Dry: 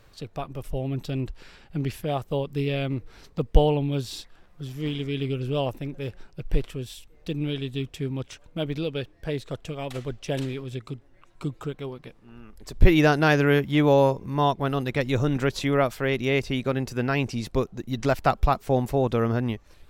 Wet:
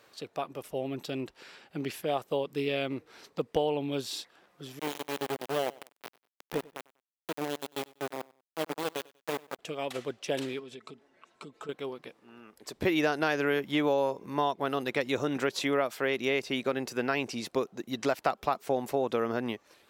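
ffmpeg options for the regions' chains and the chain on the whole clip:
-filter_complex "[0:a]asettb=1/sr,asplit=3[a][b][c];[a]atrim=end=4.794[d];[b]atrim=start=4.79:end=9.59,asetpts=PTS-STARTPTS,afade=t=in:d=0.004:c=qsin,afade=t=out:st=4.796:d=0.004:c=qsin,aeval=exprs='val(0)*gte(abs(val(0)),0.0631)':c=same,equalizer=f=5.7k:w=0.39:g=-7,aecho=1:1:96|192:0.075|0.0232,atrim=end_sample=211680[e];[c]atrim=start=9.586[f];[d][e]acrossfade=d=0.004:c1=hsin:c2=qsin[g];[g][f]acrossfade=d=0.004:c1=qsin:c2=hsin,asettb=1/sr,asplit=3[h][i][j];[h]atrim=end=10.594[k];[i]atrim=start=10.59:end=11.69,asetpts=PTS-STARTPTS,afade=t=in:d=0.004:c=qsin,afade=t=out:st=1.096:d=0.004:c=qsin,lowpass=8.7k,aecho=1:1:4.6:0.46,atrim=end_sample=48510,acompressor=threshold=-38dB:ratio=4:attack=3.2:release=140:knee=1:detection=peak[l];[j]atrim=start=11.686[m];[k][l]acrossfade=d=0.004:c1=hsin:c2=qsin[n];[n][m]acrossfade=d=0.004:c1=qsin:c2=hsin,highpass=310,acompressor=threshold=-24dB:ratio=4"

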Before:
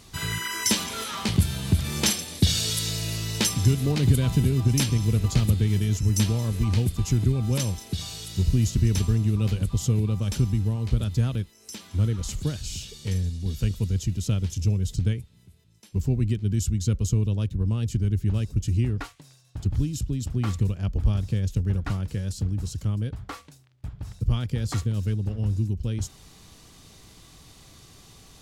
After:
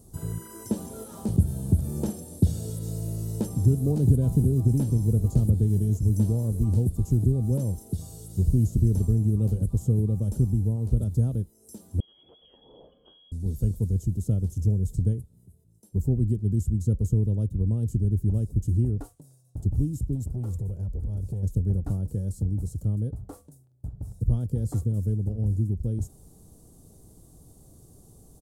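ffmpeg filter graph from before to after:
-filter_complex "[0:a]asettb=1/sr,asplit=3[a][b][c];[a]atrim=end=12.004[d];[b]atrim=start=12:end=13.32,asetpts=PTS-STARTPTS,afade=t=in:d=0.004:c=qsin,afade=t=out:st=1.316:d=0.004:c=qsin,highpass=41,acompressor=threshold=-30dB:ratio=12:attack=3.2:release=140:knee=1:detection=peak,lowpass=f=2.9k:t=q:w=0.5098,lowpass=f=2.9k:t=q:w=0.6013,lowpass=f=2.9k:t=q:w=0.9,lowpass=f=2.9k:t=q:w=2.563,afreqshift=-3400[e];[c]atrim=start=13.316[f];[d][e]acrossfade=d=0.004:c1=hsin:c2=qsin[g];[g][f]acrossfade=d=0.004:c1=qsin:c2=hsin,asettb=1/sr,asplit=3[h][i][j];[h]atrim=end=20.154[k];[i]atrim=start=20.15:end=21.43,asetpts=PTS-STARTPTS,afade=t=in:d=0.004:c=qsin,afade=t=out:st=1.276:d=0.004:c=qsin,aecho=1:1:2.1:0.34,atrim=end_sample=56448,acompressor=threshold=-25dB:ratio=8:attack=3.2:release=140:knee=1:detection=peak,volume=25dB,asoftclip=hard,volume=-25dB[l];[j]atrim=start=21.426[m];[k][l]acrossfade=d=0.004:c1=hsin:c2=qsin[n];[n][m]acrossfade=d=0.004:c1=qsin:c2=hsin,firequalizer=gain_entry='entry(490,0);entry(2100,-30);entry(8800,0)':delay=0.05:min_phase=1,acrossover=split=3100[o][p];[p]acompressor=threshold=-43dB:ratio=4:attack=1:release=60[q];[o][q]amix=inputs=2:normalize=0,equalizer=f=1.1k:t=o:w=0.51:g=-5.5"

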